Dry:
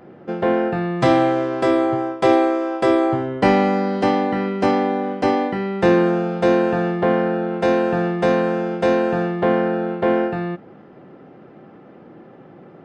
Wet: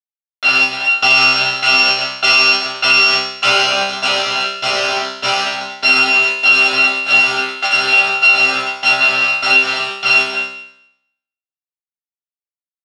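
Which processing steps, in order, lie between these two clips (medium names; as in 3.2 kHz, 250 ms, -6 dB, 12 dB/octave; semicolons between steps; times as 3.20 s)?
bit-reversed sample order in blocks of 256 samples; level-controlled noise filter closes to 1.2 kHz, open at -16.5 dBFS; in parallel at -2 dB: compression 16:1, threshold -30 dBFS, peak gain reduction 19.5 dB; on the sum: doubling 39 ms -9 dB; on a send at -22.5 dB: reverberation RT60 4.2 s, pre-delay 70 ms; on the sum: volume shaper 94 bpm, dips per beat 1, -21 dB, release 107 ms; feedback delay 297 ms, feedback 46%, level -22 dB; small samples zeroed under -17.5 dBFS; cabinet simulation 290–3800 Hz, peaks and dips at 330 Hz -7 dB, 770 Hz +6 dB, 2.2 kHz -4 dB; chord resonator C3 fifth, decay 0.75 s; loudness maximiser +34 dB; trim -1 dB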